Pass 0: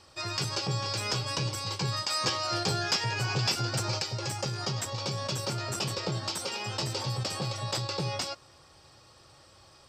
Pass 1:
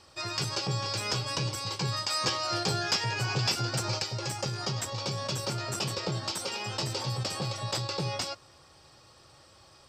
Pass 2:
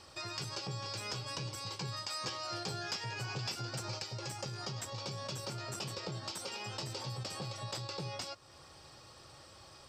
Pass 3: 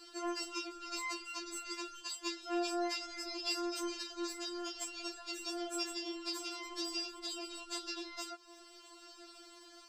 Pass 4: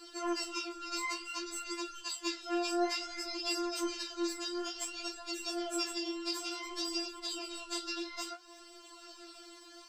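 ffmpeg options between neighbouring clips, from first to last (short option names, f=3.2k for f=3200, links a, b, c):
-af "bandreject=f=50:t=h:w=6,bandreject=f=100:t=h:w=6"
-af "acompressor=threshold=-47dB:ratio=2,volume=1dB"
-af "afftfilt=real='re*4*eq(mod(b,16),0)':imag='im*4*eq(mod(b,16),0)':win_size=2048:overlap=0.75,volume=3.5dB"
-af "flanger=delay=8.8:depth=9.4:regen=48:speed=0.57:shape=sinusoidal,volume=7dB"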